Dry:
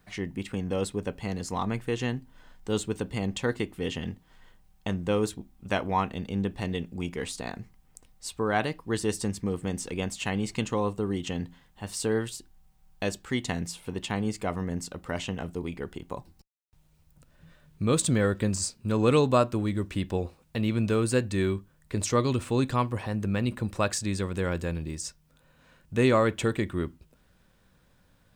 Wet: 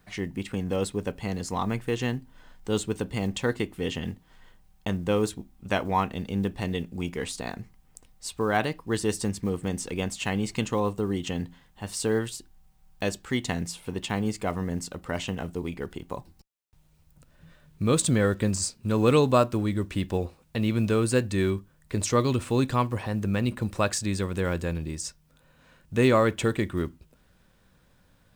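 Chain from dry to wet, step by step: block-companded coder 7-bit; trim +1.5 dB

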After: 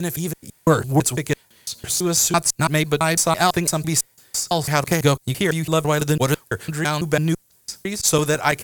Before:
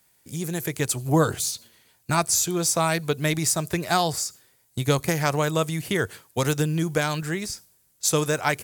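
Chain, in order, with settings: slices played last to first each 167 ms, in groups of 4; Chebyshev shaper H 8 -34 dB, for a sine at -6.5 dBFS; trim +4.5 dB

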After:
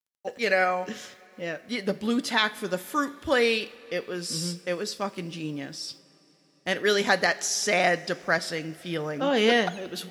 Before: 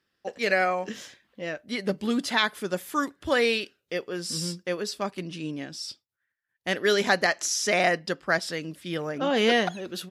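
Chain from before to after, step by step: bit crusher 11-bit; two-slope reverb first 0.44 s, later 4.6 s, from -18 dB, DRR 12.5 dB

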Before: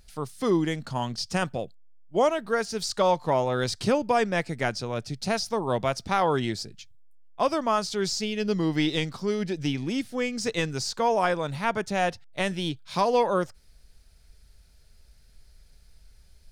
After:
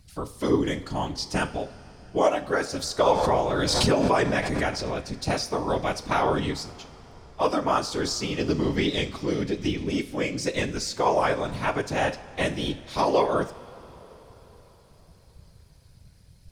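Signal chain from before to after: whisper effect; two-slope reverb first 0.4 s, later 4.8 s, from -18 dB, DRR 9.5 dB; 3.06–5.05 s: swell ahead of each attack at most 23 dB/s

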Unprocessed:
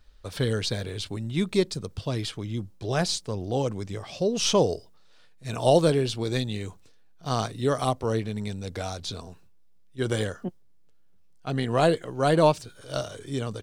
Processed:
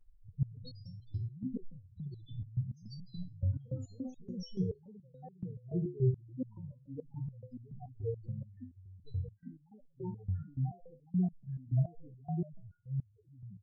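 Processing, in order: valve stage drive 11 dB, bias 0.5; peaking EQ 570 Hz -7 dB 0.26 oct; in parallel at -7.5 dB: integer overflow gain 22 dB; on the sum: bass shelf 410 Hz +9.5 dB; loudest bins only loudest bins 2; ever faster or slower copies 160 ms, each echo +2 st, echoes 2, each echo -6 dB; resonator arpeggio 7 Hz 92–990 Hz; trim +1 dB

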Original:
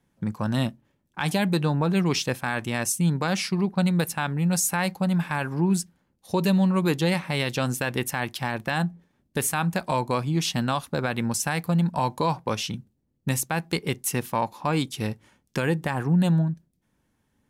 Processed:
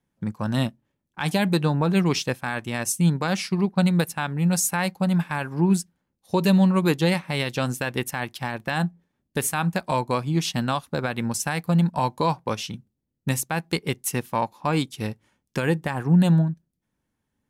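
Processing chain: upward expansion 1.5:1, over -40 dBFS; trim +4 dB

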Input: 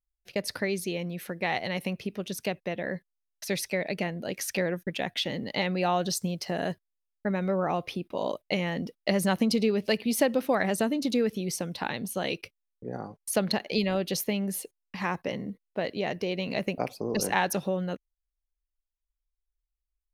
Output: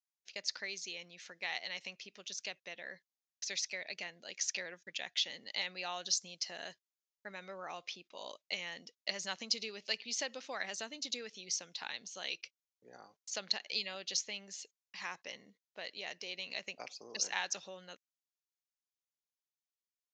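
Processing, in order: steep low-pass 7.1 kHz 96 dB/octave; differentiator; trim +3 dB

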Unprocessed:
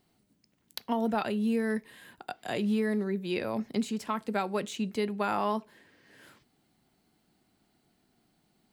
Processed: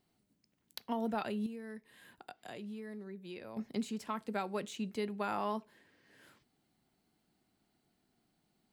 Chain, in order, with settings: 1.46–3.57 s: compression 2.5:1, threshold -41 dBFS, peak gain reduction 11 dB; trim -6.5 dB

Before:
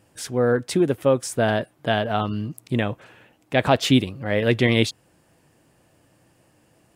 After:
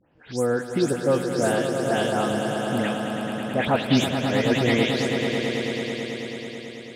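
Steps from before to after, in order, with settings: delay that grows with frequency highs late, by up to 191 ms; level-controlled noise filter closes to 2.9 kHz, open at -20 dBFS; echo with a slow build-up 109 ms, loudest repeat 5, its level -9.5 dB; trim -3 dB

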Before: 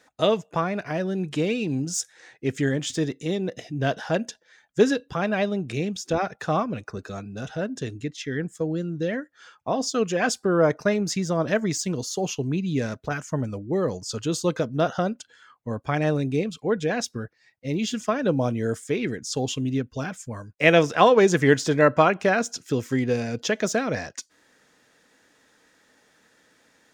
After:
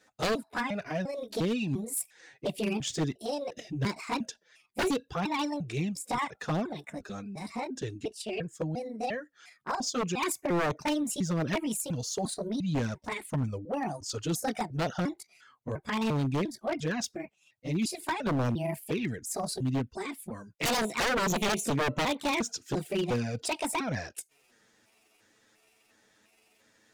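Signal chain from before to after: pitch shift switched off and on +6.5 st, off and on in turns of 350 ms; peaking EQ 970 Hz -3 dB 3 oct; touch-sensitive flanger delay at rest 9.6 ms, full sweep at -19.5 dBFS; wavefolder -22.5 dBFS

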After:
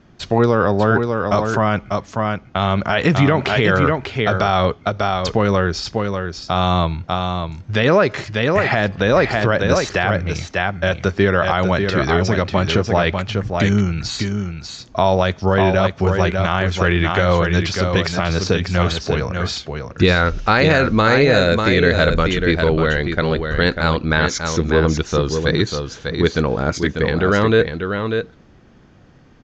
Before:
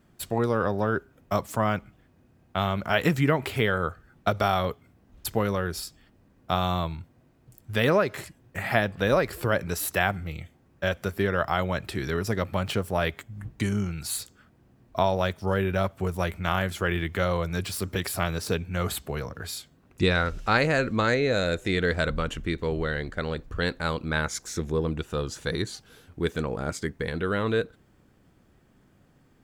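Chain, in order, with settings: steep low-pass 6.7 kHz 72 dB/octave; delay 594 ms -6.5 dB; loudness maximiser +13.5 dB; trim -2.5 dB

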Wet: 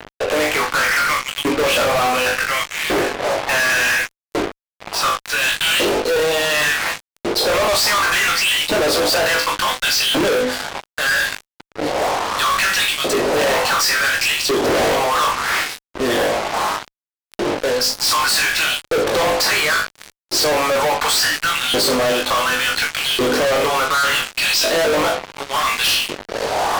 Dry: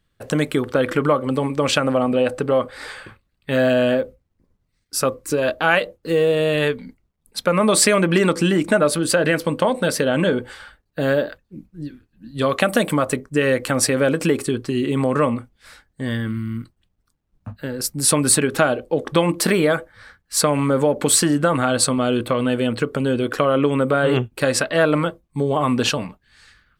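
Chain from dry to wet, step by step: wind noise 510 Hz -28 dBFS; LFO high-pass saw up 0.69 Hz 320–3500 Hz; de-hum 127.4 Hz, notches 35; low-pass sweep 2.4 kHz -> 5.1 kHz, 4.25–6.09 s; on a send: flutter echo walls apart 3.4 m, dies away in 0.26 s; on the sum: fuzz box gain 34 dB, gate -33 dBFS; trim -2 dB

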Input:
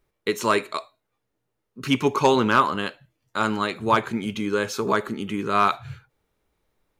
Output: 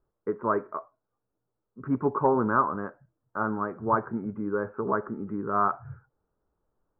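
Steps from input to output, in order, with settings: steep low-pass 1.5 kHz 48 dB/octave; trim -4.5 dB

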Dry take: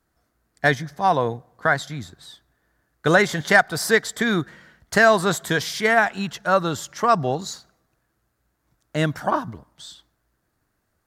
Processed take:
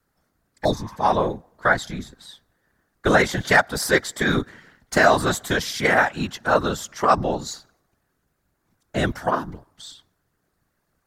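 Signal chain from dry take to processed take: spectral replace 0.67–0.93 s, 910–3500 Hz after; whisper effect

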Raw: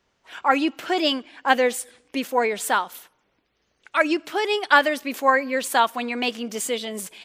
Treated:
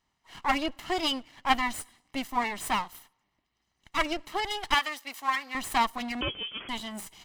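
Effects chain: comb filter that takes the minimum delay 1 ms; 4.74–5.55 s: high-pass 1.2 kHz 6 dB/octave; 6.21–6.69 s: frequency inversion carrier 3.3 kHz; trim -6 dB

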